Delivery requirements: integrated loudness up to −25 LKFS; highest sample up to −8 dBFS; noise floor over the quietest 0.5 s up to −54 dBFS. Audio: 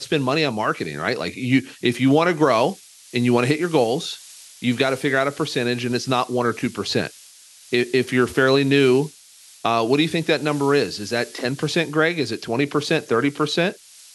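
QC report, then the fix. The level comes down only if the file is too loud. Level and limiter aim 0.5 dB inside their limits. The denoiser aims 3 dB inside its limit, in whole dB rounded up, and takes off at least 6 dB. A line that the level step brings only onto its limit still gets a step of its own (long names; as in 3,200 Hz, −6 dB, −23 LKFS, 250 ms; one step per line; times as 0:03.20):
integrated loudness −21.0 LKFS: out of spec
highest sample −4.5 dBFS: out of spec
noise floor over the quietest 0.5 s −48 dBFS: out of spec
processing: broadband denoise 6 dB, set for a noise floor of −48 dBFS
level −4.5 dB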